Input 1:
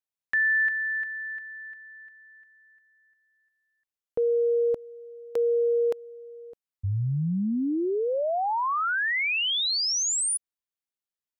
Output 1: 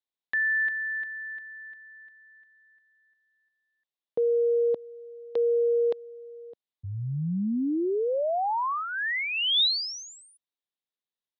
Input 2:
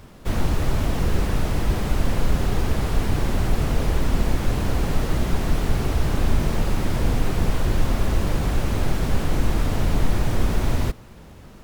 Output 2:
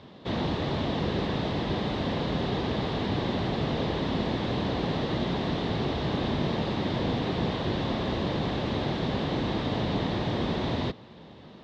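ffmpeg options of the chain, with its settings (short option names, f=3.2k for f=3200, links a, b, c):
-af "highpass=150,equalizer=f=1.4k:t=q:w=4:g=-8,equalizer=f=2.4k:t=q:w=4:g=-5,equalizer=f=3.7k:t=q:w=4:g=7,lowpass=f=4.2k:w=0.5412,lowpass=f=4.2k:w=1.3066"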